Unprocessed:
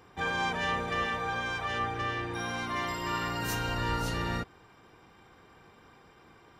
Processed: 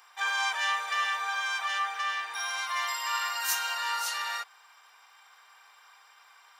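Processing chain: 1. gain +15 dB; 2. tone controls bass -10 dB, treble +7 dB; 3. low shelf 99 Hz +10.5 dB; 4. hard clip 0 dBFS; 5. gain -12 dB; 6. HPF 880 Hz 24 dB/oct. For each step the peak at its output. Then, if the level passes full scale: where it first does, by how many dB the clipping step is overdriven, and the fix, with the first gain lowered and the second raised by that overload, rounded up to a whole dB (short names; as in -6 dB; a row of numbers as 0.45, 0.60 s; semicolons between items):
-3.5, -3.5, -3.0, -3.0, -15.0, -16.0 dBFS; no overload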